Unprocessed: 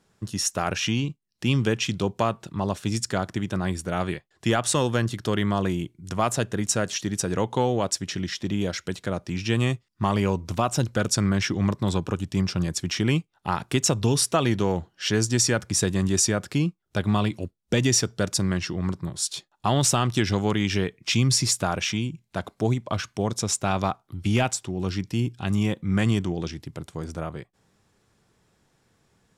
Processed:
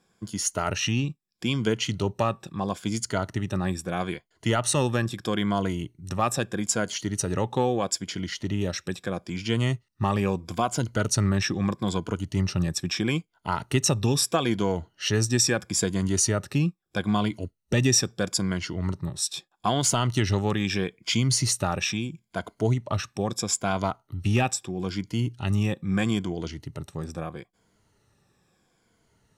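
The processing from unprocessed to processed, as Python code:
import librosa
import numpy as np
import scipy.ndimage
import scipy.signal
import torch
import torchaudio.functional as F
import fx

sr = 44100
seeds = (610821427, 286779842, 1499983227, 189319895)

y = fx.spec_ripple(x, sr, per_octave=1.8, drift_hz=-0.77, depth_db=10)
y = y * librosa.db_to_amplitude(-2.5)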